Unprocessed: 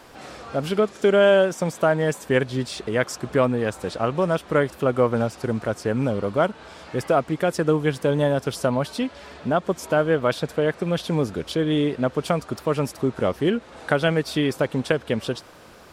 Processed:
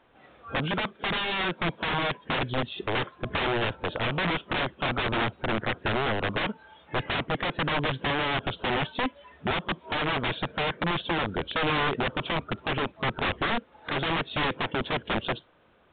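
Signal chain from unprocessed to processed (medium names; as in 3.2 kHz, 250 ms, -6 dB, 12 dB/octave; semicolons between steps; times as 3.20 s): spectral noise reduction 15 dB; integer overflow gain 20.5 dB; µ-law 64 kbps 8 kHz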